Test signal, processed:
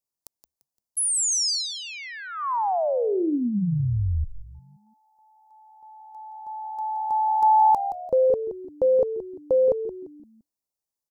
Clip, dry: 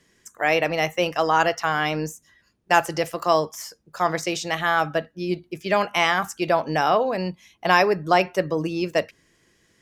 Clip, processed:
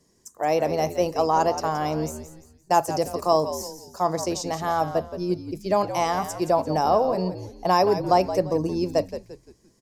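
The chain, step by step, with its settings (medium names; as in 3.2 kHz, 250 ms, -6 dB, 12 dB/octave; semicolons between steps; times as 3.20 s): high-order bell 2.2 kHz -14 dB; frequency-shifting echo 172 ms, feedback 37%, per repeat -74 Hz, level -11 dB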